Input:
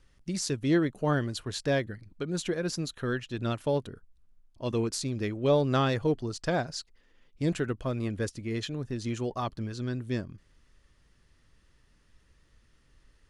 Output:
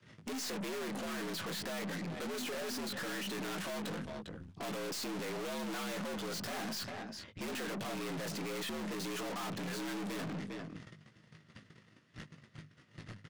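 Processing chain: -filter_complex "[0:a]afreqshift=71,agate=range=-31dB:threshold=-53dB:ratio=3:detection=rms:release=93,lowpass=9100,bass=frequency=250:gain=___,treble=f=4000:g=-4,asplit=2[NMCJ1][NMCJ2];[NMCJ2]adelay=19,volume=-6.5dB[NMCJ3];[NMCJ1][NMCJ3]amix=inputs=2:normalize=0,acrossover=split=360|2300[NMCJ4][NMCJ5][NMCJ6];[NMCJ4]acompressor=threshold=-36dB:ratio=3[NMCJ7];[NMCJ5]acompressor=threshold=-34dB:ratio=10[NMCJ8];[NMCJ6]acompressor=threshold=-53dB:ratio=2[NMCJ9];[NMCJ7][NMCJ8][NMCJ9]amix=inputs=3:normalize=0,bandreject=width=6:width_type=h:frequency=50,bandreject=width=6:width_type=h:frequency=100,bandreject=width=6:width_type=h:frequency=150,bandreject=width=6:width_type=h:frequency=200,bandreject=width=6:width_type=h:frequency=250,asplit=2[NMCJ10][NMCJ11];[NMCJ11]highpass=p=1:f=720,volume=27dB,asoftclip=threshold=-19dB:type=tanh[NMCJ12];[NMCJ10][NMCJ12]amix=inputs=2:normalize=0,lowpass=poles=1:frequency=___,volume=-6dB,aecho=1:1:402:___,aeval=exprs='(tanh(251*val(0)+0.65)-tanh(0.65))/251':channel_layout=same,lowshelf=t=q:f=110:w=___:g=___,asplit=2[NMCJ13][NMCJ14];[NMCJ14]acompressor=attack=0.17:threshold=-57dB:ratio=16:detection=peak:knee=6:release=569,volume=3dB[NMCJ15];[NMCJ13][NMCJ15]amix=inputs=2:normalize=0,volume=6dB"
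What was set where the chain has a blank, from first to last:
10, 5000, 0.0794, 1.5, -9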